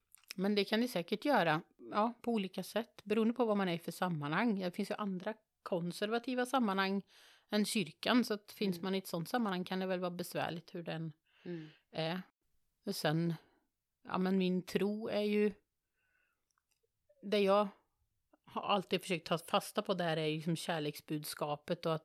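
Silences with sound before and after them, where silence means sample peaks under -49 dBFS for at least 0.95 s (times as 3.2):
15.53–17.23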